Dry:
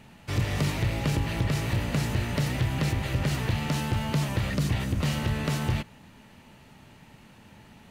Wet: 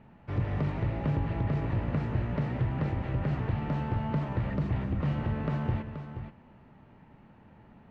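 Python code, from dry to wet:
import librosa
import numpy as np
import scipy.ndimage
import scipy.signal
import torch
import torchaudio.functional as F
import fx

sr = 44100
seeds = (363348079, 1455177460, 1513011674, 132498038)

y = scipy.signal.sosfilt(scipy.signal.butter(2, 1400.0, 'lowpass', fs=sr, output='sos'), x)
y = fx.echo_multitap(y, sr, ms=(182, 478), db=(-14.5, -9.5))
y = F.gain(torch.from_numpy(y), -3.0).numpy()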